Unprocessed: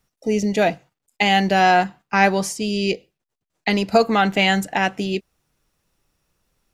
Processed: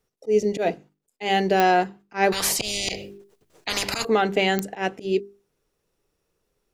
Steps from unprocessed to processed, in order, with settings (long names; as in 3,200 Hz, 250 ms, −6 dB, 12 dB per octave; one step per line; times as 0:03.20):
parametric band 420 Hz +12.5 dB 0.68 octaves
mains-hum notches 50/100/150/200/250/300/350/400 Hz
volume swells 106 ms
digital clicks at 0:01.60/0:04.59, −1 dBFS
0:02.32–0:04.05: every bin compressed towards the loudest bin 10 to 1
level −6 dB